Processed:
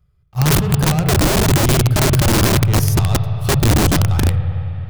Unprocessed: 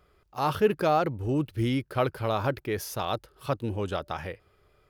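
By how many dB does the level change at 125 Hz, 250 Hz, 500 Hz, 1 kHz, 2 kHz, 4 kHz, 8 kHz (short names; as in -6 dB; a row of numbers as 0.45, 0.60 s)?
+19.5, +12.5, +6.0, +6.5, +14.0, +17.5, +25.0 dB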